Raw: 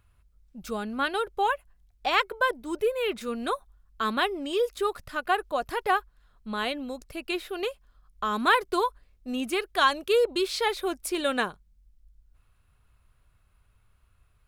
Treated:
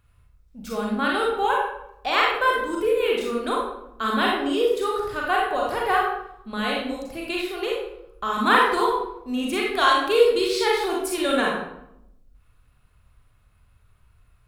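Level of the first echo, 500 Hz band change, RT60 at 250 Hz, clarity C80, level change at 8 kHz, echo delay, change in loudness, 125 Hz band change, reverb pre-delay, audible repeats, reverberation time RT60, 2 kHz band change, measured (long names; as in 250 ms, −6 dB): no echo audible, +5.5 dB, 1.1 s, 4.5 dB, +3.5 dB, no echo audible, +5.0 dB, can't be measured, 32 ms, no echo audible, 0.80 s, +5.0 dB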